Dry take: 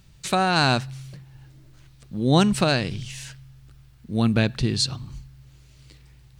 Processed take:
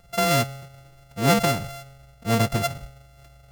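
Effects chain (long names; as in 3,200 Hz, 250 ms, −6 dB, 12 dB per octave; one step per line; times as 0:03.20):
samples sorted by size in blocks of 64 samples
phase-vocoder stretch with locked phases 0.55×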